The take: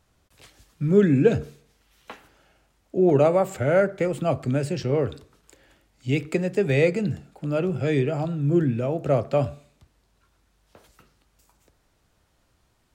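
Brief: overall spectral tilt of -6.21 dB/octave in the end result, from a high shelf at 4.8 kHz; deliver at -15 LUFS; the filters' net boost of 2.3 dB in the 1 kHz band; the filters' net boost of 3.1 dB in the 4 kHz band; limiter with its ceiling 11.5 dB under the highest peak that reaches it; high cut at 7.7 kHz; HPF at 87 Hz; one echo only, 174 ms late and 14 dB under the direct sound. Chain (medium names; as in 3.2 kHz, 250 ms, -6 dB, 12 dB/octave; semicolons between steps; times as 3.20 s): high-pass 87 Hz; low-pass 7.7 kHz; peaking EQ 1 kHz +3.5 dB; peaking EQ 4 kHz +7.5 dB; treble shelf 4.8 kHz -7.5 dB; peak limiter -16.5 dBFS; delay 174 ms -14 dB; trim +11.5 dB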